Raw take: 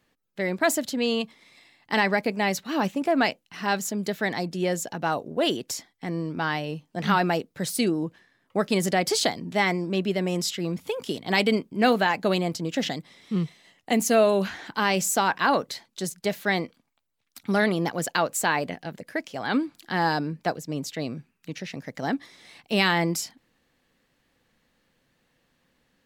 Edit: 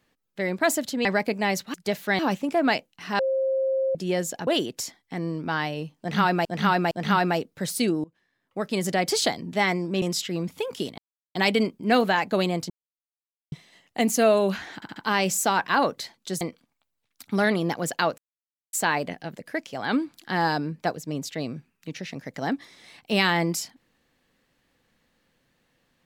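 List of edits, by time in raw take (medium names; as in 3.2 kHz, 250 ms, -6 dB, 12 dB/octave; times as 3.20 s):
1.05–2.03 s: delete
3.72–4.48 s: bleep 532 Hz -21 dBFS
5.00–5.38 s: delete
6.90–7.36 s: loop, 3 plays
8.03–9.07 s: fade in, from -23.5 dB
10.01–10.31 s: delete
11.27 s: insert silence 0.37 s
12.62–13.44 s: mute
14.67 s: stutter 0.07 s, 4 plays
16.12–16.57 s: move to 2.72 s
18.34 s: insert silence 0.55 s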